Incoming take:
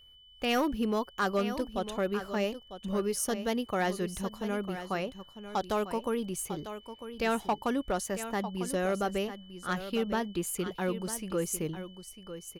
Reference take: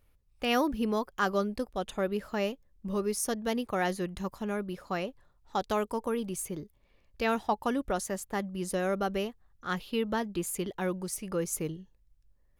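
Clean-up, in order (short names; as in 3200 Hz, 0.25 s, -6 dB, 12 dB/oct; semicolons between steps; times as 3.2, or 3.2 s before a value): clip repair -22 dBFS; notch 3000 Hz, Q 30; inverse comb 0.949 s -11.5 dB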